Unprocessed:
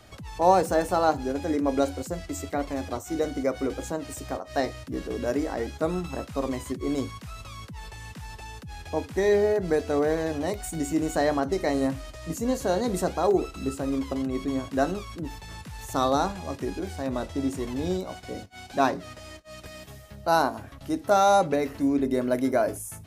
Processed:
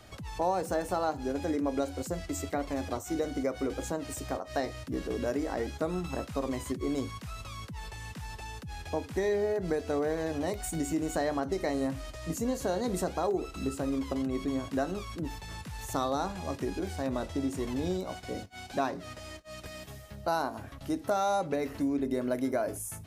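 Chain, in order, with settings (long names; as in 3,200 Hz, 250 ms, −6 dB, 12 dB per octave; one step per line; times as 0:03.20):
downward compressor 3 to 1, threshold −27 dBFS, peak gain reduction 10.5 dB
level −1 dB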